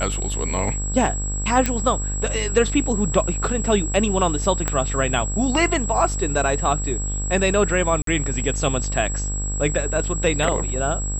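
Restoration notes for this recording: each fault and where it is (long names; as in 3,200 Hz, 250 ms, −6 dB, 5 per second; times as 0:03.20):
mains buzz 50 Hz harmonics 35 −26 dBFS
whistle 7,700 Hz −28 dBFS
0:01.66: click −6 dBFS
0:04.68: click −7 dBFS
0:08.02–0:08.07: drop-out 53 ms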